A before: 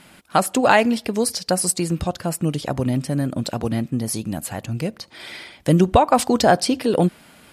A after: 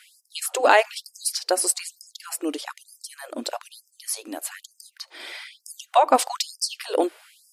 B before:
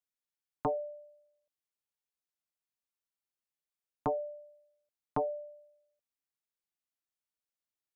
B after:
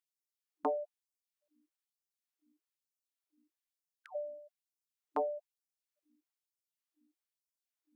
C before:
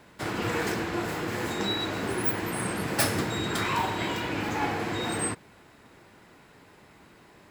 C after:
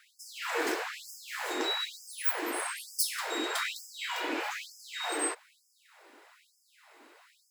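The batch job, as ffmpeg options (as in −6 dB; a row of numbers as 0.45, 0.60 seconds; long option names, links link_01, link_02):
-af "aeval=exprs='val(0)+0.00141*(sin(2*PI*60*n/s)+sin(2*PI*2*60*n/s)/2+sin(2*PI*3*60*n/s)/3+sin(2*PI*4*60*n/s)/4+sin(2*PI*5*60*n/s)/5)':channel_layout=same,afftfilt=real='re*gte(b*sr/1024,250*pow(4900/250,0.5+0.5*sin(2*PI*1.1*pts/sr)))':imag='im*gte(b*sr/1024,250*pow(4900/250,0.5+0.5*sin(2*PI*1.1*pts/sr)))':win_size=1024:overlap=0.75,volume=-1dB"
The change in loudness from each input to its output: −3.5, −2.0, −4.0 LU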